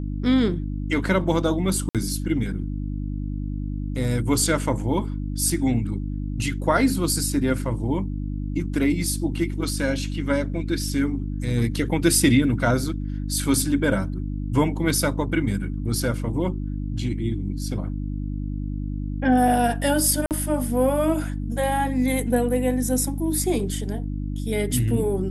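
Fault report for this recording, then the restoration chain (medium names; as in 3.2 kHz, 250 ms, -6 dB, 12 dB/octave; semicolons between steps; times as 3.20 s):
hum 50 Hz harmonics 6 -28 dBFS
1.89–1.95 s: dropout 57 ms
20.26–20.31 s: dropout 48 ms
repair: de-hum 50 Hz, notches 6; interpolate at 1.89 s, 57 ms; interpolate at 20.26 s, 48 ms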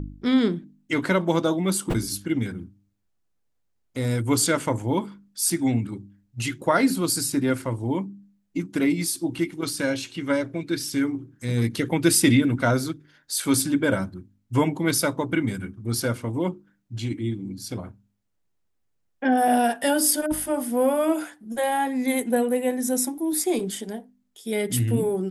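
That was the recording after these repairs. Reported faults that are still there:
nothing left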